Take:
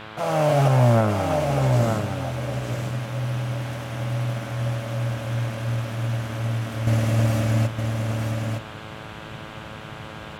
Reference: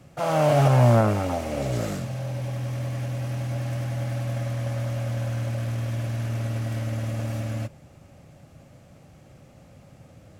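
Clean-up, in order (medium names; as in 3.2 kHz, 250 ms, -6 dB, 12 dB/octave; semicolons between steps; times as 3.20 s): de-hum 108.2 Hz, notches 15; noise print and reduce 13 dB; inverse comb 914 ms -5 dB; trim 0 dB, from 6.87 s -8 dB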